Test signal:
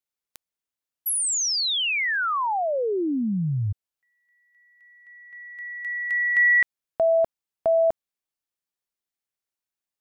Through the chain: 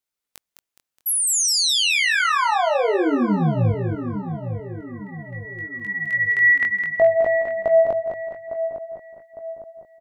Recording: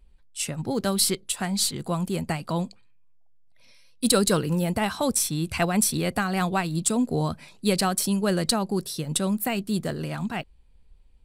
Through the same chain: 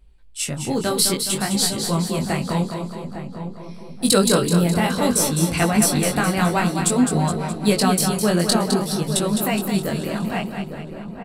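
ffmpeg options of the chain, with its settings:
-filter_complex "[0:a]asplit=2[a][b];[b]aecho=0:1:209|418|627|836|1045|1254:0.447|0.228|0.116|0.0593|0.0302|0.0154[c];[a][c]amix=inputs=2:normalize=0,flanger=delay=18:depth=5.1:speed=0.54,asplit=2[d][e];[e]adelay=856,lowpass=f=1.1k:p=1,volume=-9dB,asplit=2[f][g];[g]adelay=856,lowpass=f=1.1k:p=1,volume=0.48,asplit=2[h][i];[i]adelay=856,lowpass=f=1.1k:p=1,volume=0.48,asplit=2[j][k];[k]adelay=856,lowpass=f=1.1k:p=1,volume=0.48,asplit=2[l][m];[m]adelay=856,lowpass=f=1.1k:p=1,volume=0.48[n];[f][h][j][l][n]amix=inputs=5:normalize=0[o];[d][o]amix=inputs=2:normalize=0,volume=7dB"

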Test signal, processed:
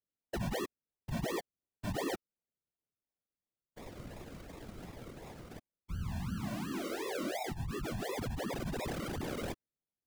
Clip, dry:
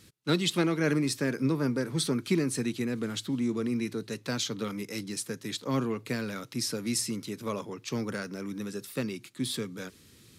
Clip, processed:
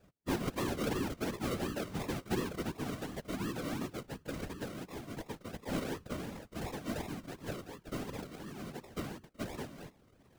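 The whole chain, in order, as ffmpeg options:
-af "acrusher=samples=41:mix=1:aa=0.000001:lfo=1:lforange=24.6:lforate=2.8,afftfilt=real='hypot(re,im)*cos(2*PI*random(0))':imag='hypot(re,im)*sin(2*PI*random(1))':win_size=512:overlap=0.75,volume=-2dB"

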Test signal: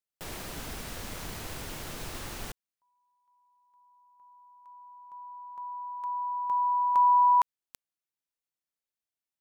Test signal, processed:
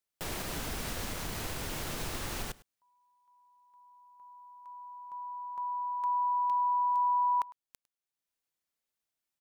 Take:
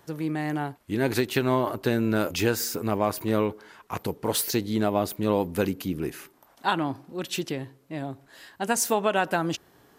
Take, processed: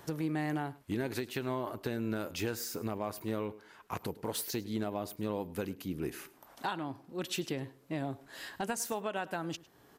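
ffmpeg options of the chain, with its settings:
-filter_complex "[0:a]acompressor=threshold=-30dB:ratio=6:attack=0.1:release=866:knee=1:detection=rms,asplit=2[a][b];[b]aecho=0:1:104:0.0944[c];[a][c]amix=inputs=2:normalize=0,volume=3.5dB"

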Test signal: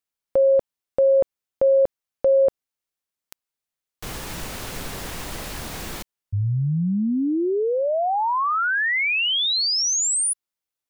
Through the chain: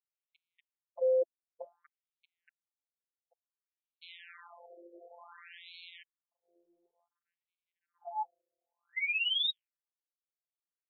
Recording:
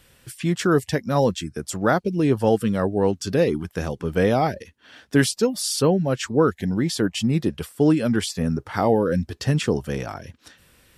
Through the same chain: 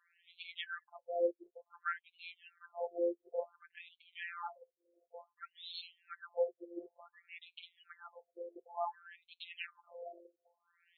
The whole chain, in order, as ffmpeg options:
-af "afftfilt=real='hypot(re,im)*cos(PI*b)':imag='0':win_size=1024:overlap=0.75,aemphasis=mode=production:type=50kf,afftfilt=real='re*between(b*sr/1024,450*pow(3100/450,0.5+0.5*sin(2*PI*0.56*pts/sr))/1.41,450*pow(3100/450,0.5+0.5*sin(2*PI*0.56*pts/sr))*1.41)':imag='im*between(b*sr/1024,450*pow(3100/450,0.5+0.5*sin(2*PI*0.56*pts/sr))/1.41,450*pow(3100/450,0.5+0.5*sin(2*PI*0.56*pts/sr))*1.41)':win_size=1024:overlap=0.75,volume=-8.5dB"

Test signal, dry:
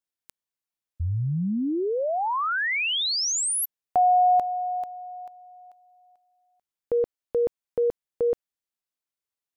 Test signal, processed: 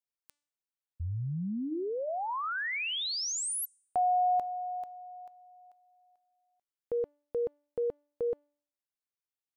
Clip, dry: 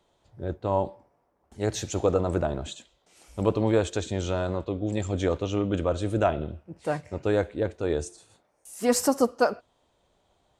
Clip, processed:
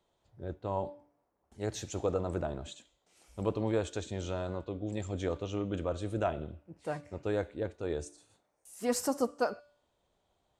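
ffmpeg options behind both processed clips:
-af "bandreject=f=291.7:t=h:w=4,bandreject=f=583.4:t=h:w=4,bandreject=f=875.1:t=h:w=4,bandreject=f=1.1668k:t=h:w=4,bandreject=f=1.4585k:t=h:w=4,bandreject=f=1.7502k:t=h:w=4,bandreject=f=2.0419k:t=h:w=4,bandreject=f=2.3336k:t=h:w=4,bandreject=f=2.6253k:t=h:w=4,bandreject=f=2.917k:t=h:w=4,bandreject=f=3.2087k:t=h:w=4,bandreject=f=3.5004k:t=h:w=4,bandreject=f=3.7921k:t=h:w=4,bandreject=f=4.0838k:t=h:w=4,bandreject=f=4.3755k:t=h:w=4,bandreject=f=4.6672k:t=h:w=4,bandreject=f=4.9589k:t=h:w=4,bandreject=f=5.2506k:t=h:w=4,bandreject=f=5.5423k:t=h:w=4,bandreject=f=5.834k:t=h:w=4,bandreject=f=6.1257k:t=h:w=4,bandreject=f=6.4174k:t=h:w=4,bandreject=f=6.7091k:t=h:w=4,bandreject=f=7.0008k:t=h:w=4,bandreject=f=7.2925k:t=h:w=4,bandreject=f=7.5842k:t=h:w=4,bandreject=f=7.8759k:t=h:w=4,bandreject=f=8.1676k:t=h:w=4,bandreject=f=8.4593k:t=h:w=4,bandreject=f=8.751k:t=h:w=4,bandreject=f=9.0427k:t=h:w=4,bandreject=f=9.3344k:t=h:w=4,bandreject=f=9.6261k:t=h:w=4,volume=-8dB"

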